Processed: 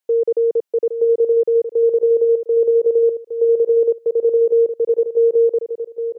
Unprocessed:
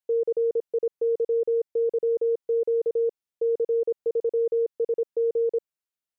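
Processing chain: high-pass 200 Hz 12 dB/octave; feedback delay 814 ms, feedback 25%, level -8.5 dB; trim +7.5 dB

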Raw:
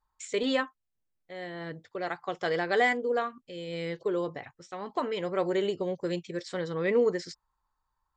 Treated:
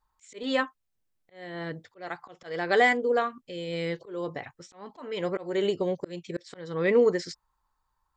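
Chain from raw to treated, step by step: slow attack 286 ms; trim +3.5 dB

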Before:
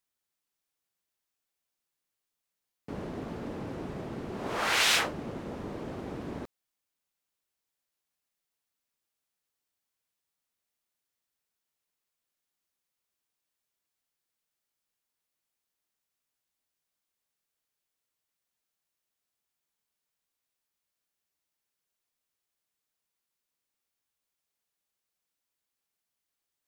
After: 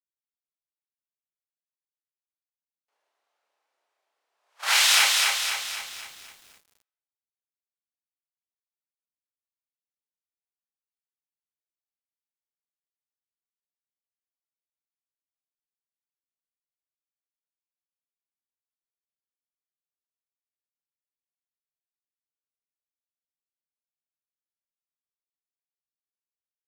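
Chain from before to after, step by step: gate -27 dBFS, range -42 dB; high-pass 660 Hz 24 dB/octave; treble shelf 2.5 kHz +11 dB; peak limiter -16.5 dBFS, peak gain reduction 10.5 dB; doubling 31 ms -3 dB; on a send at -11 dB: reverberation RT60 1.7 s, pre-delay 5 ms; on the sum: bit-crushed delay 256 ms, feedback 55%, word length 9-bit, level -3 dB; trim +5 dB

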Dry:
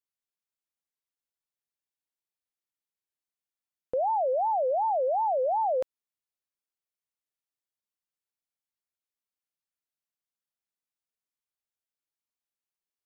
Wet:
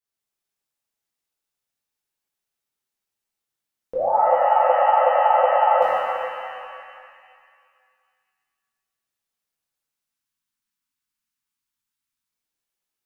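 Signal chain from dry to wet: spectral selection erased 9.94–12.27 s, 320–850 Hz; pitch-shifted reverb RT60 2.1 s, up +7 st, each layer -8 dB, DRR -9 dB; trim -1.5 dB

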